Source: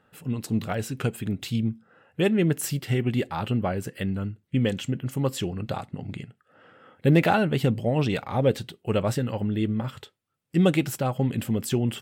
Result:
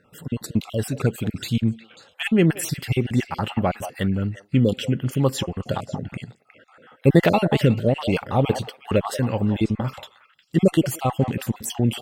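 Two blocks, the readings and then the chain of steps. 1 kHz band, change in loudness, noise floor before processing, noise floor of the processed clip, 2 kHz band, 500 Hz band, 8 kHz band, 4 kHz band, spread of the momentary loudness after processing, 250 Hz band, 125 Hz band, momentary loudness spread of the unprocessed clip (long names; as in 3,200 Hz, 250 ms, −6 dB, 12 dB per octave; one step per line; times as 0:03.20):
+3.0 dB, +3.5 dB, −72 dBFS, −60 dBFS, +2.5 dB, +3.5 dB, +3.0 dB, +3.5 dB, 10 LU, +3.5 dB, +3.5 dB, 11 LU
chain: time-frequency cells dropped at random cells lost 38%
echo through a band-pass that steps 180 ms, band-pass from 770 Hz, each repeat 1.4 octaves, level −8 dB
harmonic generator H 8 −43 dB, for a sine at −7 dBFS
level +5.5 dB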